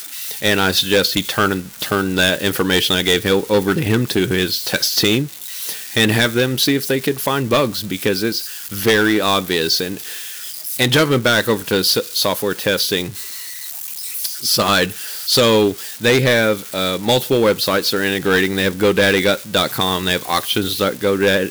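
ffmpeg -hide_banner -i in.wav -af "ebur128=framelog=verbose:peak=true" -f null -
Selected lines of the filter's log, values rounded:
Integrated loudness:
  I:         -16.9 LUFS
  Threshold: -26.9 LUFS
Loudness range:
  LRA:         2.2 LU
  Threshold: -36.9 LUFS
  LRA low:   -18.0 LUFS
  LRA high:  -15.9 LUFS
True peak:
  Peak:       -6.2 dBFS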